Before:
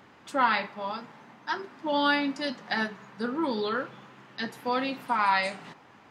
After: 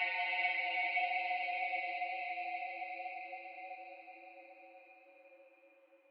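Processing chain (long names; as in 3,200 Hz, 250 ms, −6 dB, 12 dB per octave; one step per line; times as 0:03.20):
noise reduction from a noise print of the clip's start 29 dB
single-sideband voice off tune +140 Hz 330–3,000 Hz
extreme stretch with random phases 31×, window 0.25 s, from 0:05.45
level −2.5 dB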